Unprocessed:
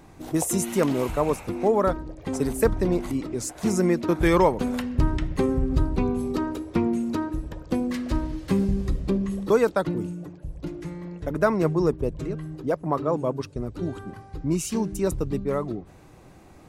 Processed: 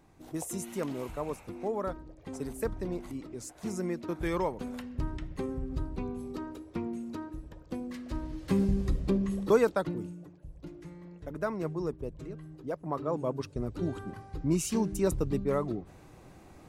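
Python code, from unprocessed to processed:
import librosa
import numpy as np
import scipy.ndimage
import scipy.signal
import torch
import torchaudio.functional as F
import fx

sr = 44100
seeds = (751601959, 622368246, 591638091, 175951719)

y = fx.gain(x, sr, db=fx.line((8.05, -12.0), (8.61, -3.5), (9.56, -3.5), (10.3, -11.5), (12.57, -11.5), (13.65, -3.0)))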